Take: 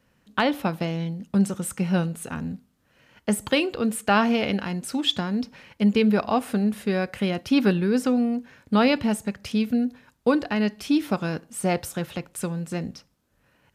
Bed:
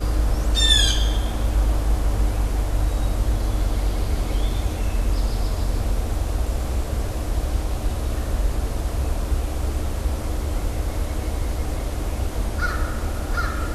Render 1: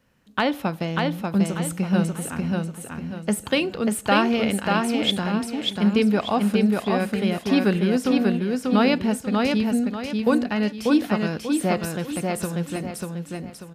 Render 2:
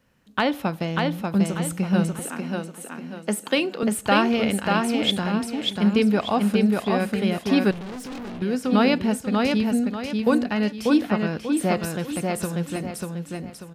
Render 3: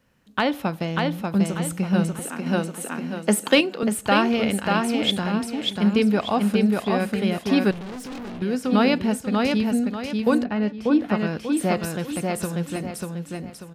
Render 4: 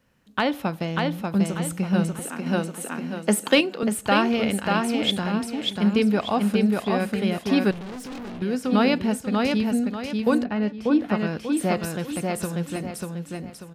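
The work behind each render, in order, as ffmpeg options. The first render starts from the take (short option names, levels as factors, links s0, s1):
-af "aecho=1:1:590|1180|1770|2360|2950:0.708|0.248|0.0867|0.0304|0.0106"
-filter_complex "[0:a]asettb=1/sr,asplit=3[s0][s1][s2];[s0]atrim=end=2.194[s3];[s1]atrim=start=2.19:end=3.83,asetpts=PTS-STARTPTS,afade=t=in:d=0.004:c=qsin,afade=t=out:st=1.636:d=0.004:c=qsin,highpass=f=210:w=0.5412,highpass=f=210:w=1.3066[s4];[s2]atrim=start=3.826[s5];[s3][s4]acrossfade=d=0.004:c1=hsin:c2=qsin[s6];[s6][s5]acrossfade=d=0.004:c1=qsin:c2=hsin,asettb=1/sr,asplit=3[s7][s8][s9];[s7]atrim=end=7.714[s10];[s8]atrim=start=7.71:end=8.42,asetpts=PTS-STARTPTS,afade=t=in:d=0.004:c=qsin,afade=t=out:st=0.706:d=0.004:c=qsin,aeval=exprs='(tanh(44.7*val(0)+0.3)-tanh(0.3))/44.7':c=same[s11];[s9]atrim=start=8.416[s12];[s10][s11]acrossfade=d=0.004:c1=hsin:c2=qsin[s13];[s13][s12]acrossfade=d=0.004:c1=qsin:c2=hsin,asettb=1/sr,asplit=3[s14][s15][s16];[s14]atrim=end=11.014[s17];[s15]atrim=start=11.01:end=11.57,asetpts=PTS-STARTPTS,afade=t=in:d=0.004:c=qsin,afade=t=out:st=0.556:d=0.004:c=qsin,acrossover=split=3500[s18][s19];[s19]acompressor=threshold=0.00398:ratio=4:attack=1:release=60[s20];[s18][s20]amix=inputs=2:normalize=0[s21];[s16]atrim=start=11.566[s22];[s17][s21]acrossfade=d=0.004:c1=hsin:c2=qsin[s23];[s23][s22]acrossfade=d=0.004:c1=qsin:c2=hsin"
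-filter_complex "[0:a]asettb=1/sr,asplit=3[s0][s1][s2];[s0]atrim=end=2.464[s3];[s1]atrim=start=2.46:end=3.61,asetpts=PTS-STARTPTS,afade=t=in:d=0.004:c=qsin,afade=t=out:st=1.146:d=0.004:c=qsin,acontrast=46[s4];[s2]atrim=start=3.606[s5];[s3][s4]acrossfade=d=0.004:c1=hsin:c2=qsin[s6];[s6][s5]acrossfade=d=0.004:c1=qsin:c2=hsin,asettb=1/sr,asplit=3[s7][s8][s9];[s7]atrim=end=10.444[s10];[s8]atrim=start=10.44:end=11.09,asetpts=PTS-STARTPTS,afade=t=in:d=0.004:c=qsin,afade=t=out:st=0.646:d=0.004:c=qsin,lowpass=f=1400:p=1[s11];[s9]atrim=start=11.086[s12];[s10][s11]acrossfade=d=0.004:c1=hsin:c2=qsin[s13];[s13][s12]acrossfade=d=0.004:c1=qsin:c2=hsin"
-af "volume=0.891"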